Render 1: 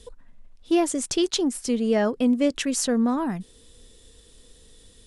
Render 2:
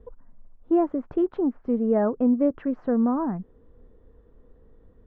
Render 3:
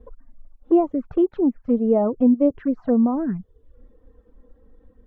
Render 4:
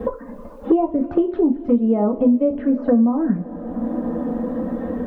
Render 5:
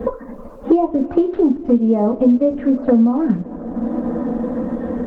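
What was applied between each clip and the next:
LPF 1300 Hz 24 dB/oct
reverb removal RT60 0.66 s; envelope flanger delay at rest 4.2 ms, full sweep at -21 dBFS; gain +5.5 dB
reverb, pre-delay 3 ms, DRR 2.5 dB; three-band squash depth 100%
gain +2.5 dB; Opus 16 kbps 48000 Hz

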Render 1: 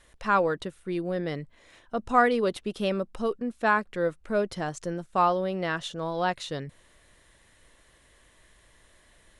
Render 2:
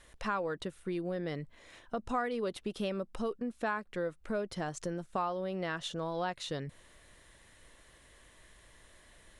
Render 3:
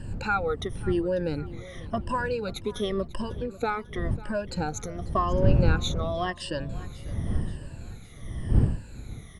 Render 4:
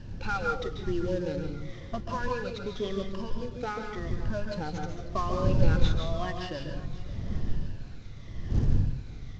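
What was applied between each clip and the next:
compressor 3:1, threshold -34 dBFS, peak gain reduction 14 dB
moving spectral ripple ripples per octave 1.3, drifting -0.92 Hz, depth 23 dB; wind noise 110 Hz -31 dBFS; feedback echo 0.545 s, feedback 51%, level -19 dB; gain +1.5 dB
CVSD 32 kbps; on a send at -3 dB: reverb RT60 0.40 s, pre-delay 0.136 s; on the sum: gain -5.5 dB

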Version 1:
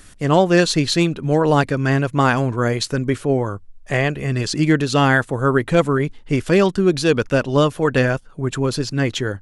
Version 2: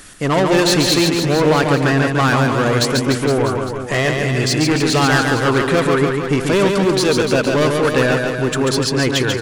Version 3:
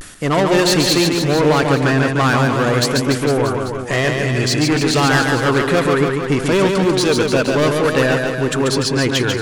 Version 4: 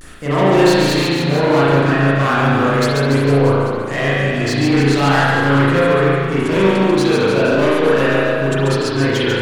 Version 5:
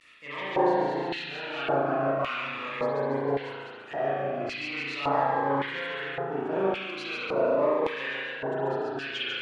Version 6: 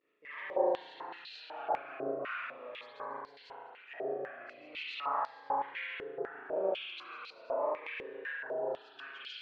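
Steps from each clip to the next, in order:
low shelf 150 Hz -10.5 dB; soft clip -19.5 dBFS, distortion -8 dB; on a send: reverse bouncing-ball echo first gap 0.14 s, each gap 1.1×, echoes 5; on the sum: gain +7.5 dB
reverse; upward compressor, threshold -20 dBFS; reverse; vibrato 0.4 Hz 41 cents
bit-crush 9-bit; spring tank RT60 1.1 s, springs 36 ms, chirp 35 ms, DRR -8 dB; gain -7.5 dB
high shelf 3100 Hz -10 dB; LFO band-pass square 0.89 Hz 780–2700 Hz; cascading phaser falling 0.4 Hz
stepped band-pass 4 Hz 410–4600 Hz

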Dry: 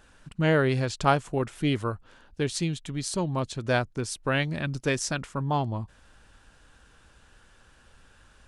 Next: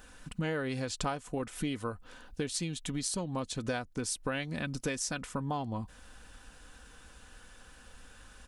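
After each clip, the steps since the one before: high shelf 8000 Hz +9 dB; comb 4 ms, depth 40%; compressor 6:1, threshold -33 dBFS, peak gain reduction 16.5 dB; gain +1.5 dB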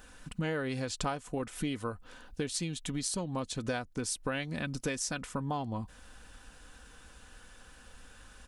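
nothing audible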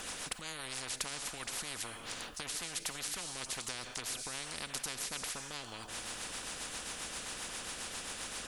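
rotary speaker horn 7.5 Hz; Schroeder reverb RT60 1.4 s, combs from 27 ms, DRR 19 dB; spectral compressor 10:1; gain +1 dB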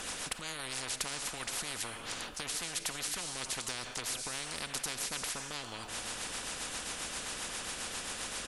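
hard clip -27.5 dBFS, distortion -25 dB; speakerphone echo 0.28 s, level -11 dB; downsampling 32000 Hz; gain +2.5 dB

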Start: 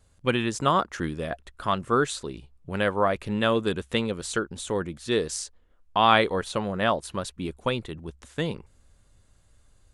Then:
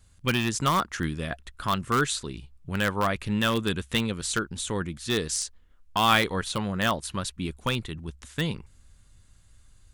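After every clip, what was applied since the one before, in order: bell 540 Hz -10 dB 1.8 oct; in parallel at -9 dB: wrapped overs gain 19 dB; on the sum: gain +1.5 dB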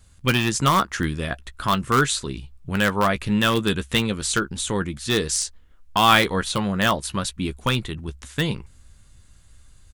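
doubler 15 ms -12 dB; gain +5 dB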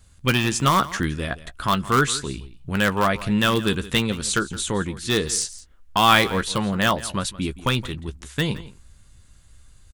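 echo 0.169 s -17.5 dB

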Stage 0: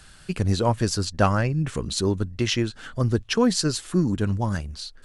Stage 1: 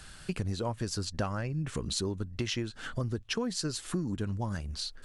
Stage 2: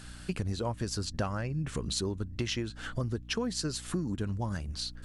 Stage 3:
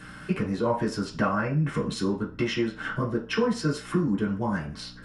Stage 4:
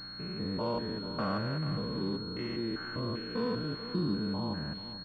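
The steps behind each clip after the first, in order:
compressor 6:1, threshold -30 dBFS, peak gain reduction 15 dB
hum 60 Hz, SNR 14 dB
reverb RT60 0.35 s, pre-delay 3 ms, DRR -4 dB; gain -5 dB
stepped spectrum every 0.2 s; echo 0.44 s -12 dB; pulse-width modulation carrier 4300 Hz; gain -5 dB

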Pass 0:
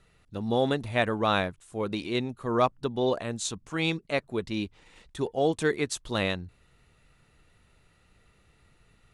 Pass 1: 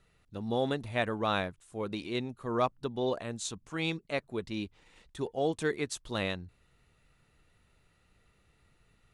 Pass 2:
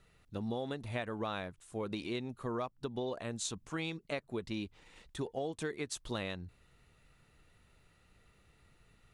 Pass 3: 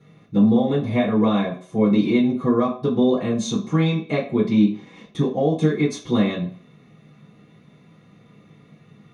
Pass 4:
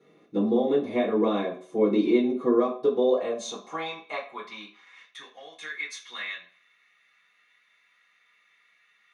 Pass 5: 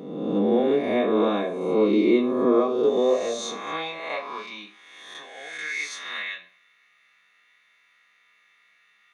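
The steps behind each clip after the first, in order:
de-esser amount 40%; gain -5 dB
compressor 12:1, threshold -35 dBFS, peak gain reduction 13.5 dB; gain +1.5 dB
reverb RT60 0.50 s, pre-delay 3 ms, DRR -9 dB; gain -3 dB
high-pass sweep 350 Hz -> 1800 Hz, 2.57–5.25; gain -6 dB
spectral swells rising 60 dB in 1.25 s

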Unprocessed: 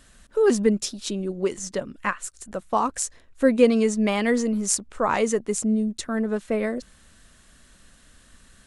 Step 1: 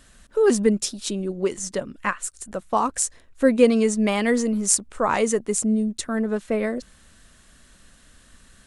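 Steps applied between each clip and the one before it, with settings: dynamic EQ 9200 Hz, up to +5 dB, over -48 dBFS, Q 1.8; gain +1 dB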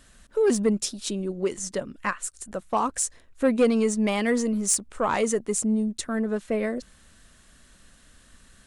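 soft clip -10.5 dBFS, distortion -18 dB; gain -2 dB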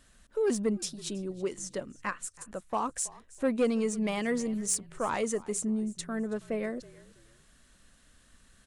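frequency-shifting echo 0.325 s, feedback 30%, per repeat -45 Hz, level -21 dB; gain -6.5 dB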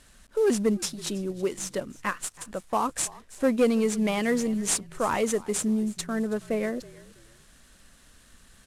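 CVSD 64 kbps; gain +5 dB

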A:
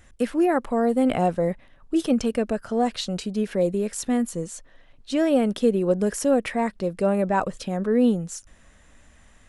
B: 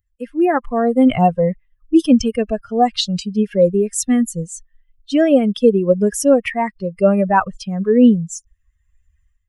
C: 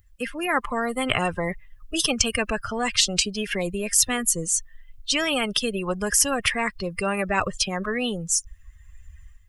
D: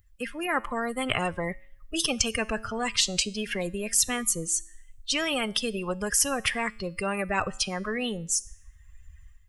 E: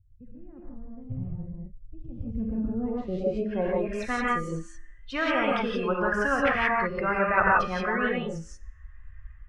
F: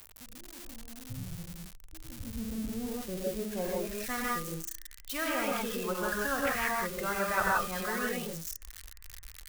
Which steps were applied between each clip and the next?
per-bin expansion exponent 2; AGC gain up to 14.5 dB
spectral compressor 4:1
resonator 110 Hz, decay 0.63 s, harmonics all, mix 40%
non-linear reverb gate 0.2 s rising, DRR -3.5 dB; low-pass sweep 120 Hz -> 1500 Hz, 2.15–4.02; gain -1.5 dB
switching spikes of -21.5 dBFS; gain -7 dB

